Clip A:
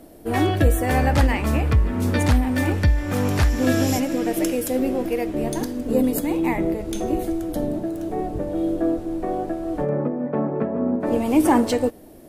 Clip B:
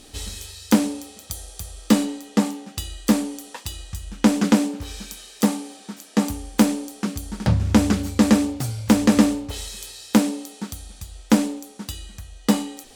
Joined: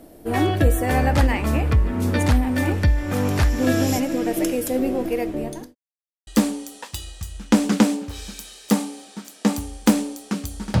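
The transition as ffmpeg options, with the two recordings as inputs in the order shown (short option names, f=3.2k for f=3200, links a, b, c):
-filter_complex "[0:a]apad=whole_dur=10.8,atrim=end=10.8,asplit=2[a][b];[a]atrim=end=5.75,asetpts=PTS-STARTPTS,afade=t=out:st=5.27:d=0.48[c];[b]atrim=start=5.75:end=6.27,asetpts=PTS-STARTPTS,volume=0[d];[1:a]atrim=start=2.99:end=7.52,asetpts=PTS-STARTPTS,afade=t=in:d=0.004:c=hsin[e];[c][d][e]concat=n=3:v=0:a=1"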